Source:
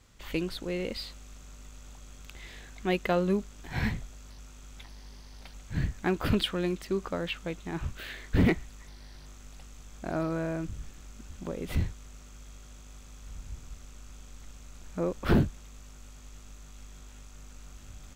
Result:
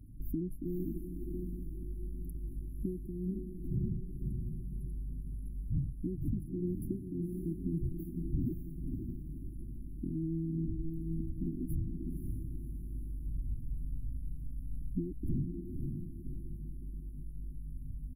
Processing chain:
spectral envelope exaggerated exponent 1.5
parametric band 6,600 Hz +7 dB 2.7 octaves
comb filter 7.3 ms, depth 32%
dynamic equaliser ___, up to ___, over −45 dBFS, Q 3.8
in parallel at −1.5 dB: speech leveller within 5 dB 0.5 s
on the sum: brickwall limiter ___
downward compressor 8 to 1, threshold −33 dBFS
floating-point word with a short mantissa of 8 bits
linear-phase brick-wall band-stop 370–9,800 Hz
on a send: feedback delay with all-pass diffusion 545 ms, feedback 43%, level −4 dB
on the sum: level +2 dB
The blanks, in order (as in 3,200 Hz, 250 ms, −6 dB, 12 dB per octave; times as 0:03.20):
140 Hz, +3 dB, −14 dBFS